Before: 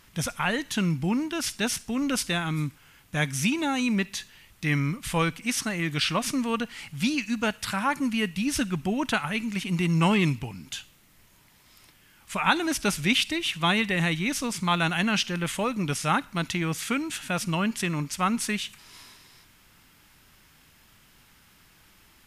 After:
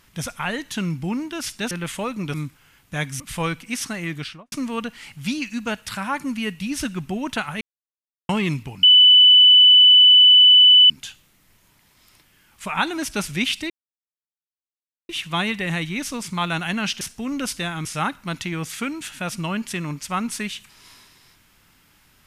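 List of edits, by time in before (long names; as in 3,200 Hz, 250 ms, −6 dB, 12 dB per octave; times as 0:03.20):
0:01.71–0:02.55: swap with 0:15.31–0:15.94
0:03.41–0:04.96: remove
0:05.83–0:06.28: fade out and dull
0:09.37–0:10.05: silence
0:10.59: insert tone 2,990 Hz −7.5 dBFS 2.07 s
0:13.39: splice in silence 1.39 s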